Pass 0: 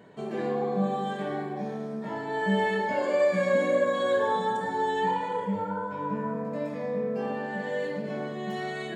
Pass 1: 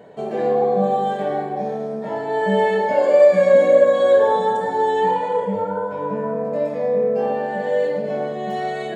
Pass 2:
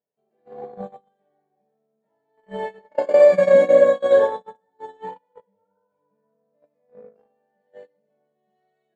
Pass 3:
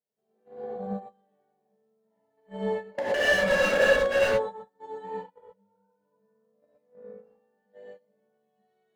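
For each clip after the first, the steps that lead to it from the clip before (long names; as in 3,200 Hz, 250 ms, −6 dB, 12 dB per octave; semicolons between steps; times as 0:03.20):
flat-topped bell 600 Hz +8.5 dB 1.1 octaves; level +3.5 dB
noise gate −14 dBFS, range −47 dB
wave folding −14 dBFS; reverb whose tail is shaped and stops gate 140 ms rising, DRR −6 dB; level −9 dB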